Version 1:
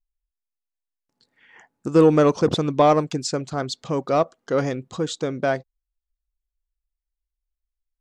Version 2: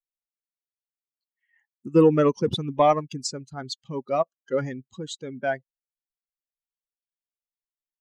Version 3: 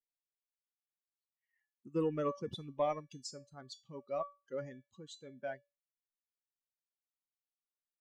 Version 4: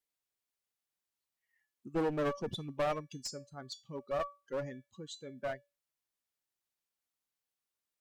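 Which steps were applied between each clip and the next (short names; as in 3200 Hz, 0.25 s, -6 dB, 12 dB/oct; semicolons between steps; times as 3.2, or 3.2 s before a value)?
per-bin expansion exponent 2
resonator 570 Hz, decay 0.26 s, harmonics all, mix 80%; gain -4 dB
one-sided clip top -40.5 dBFS, bottom -28.5 dBFS; gain +5 dB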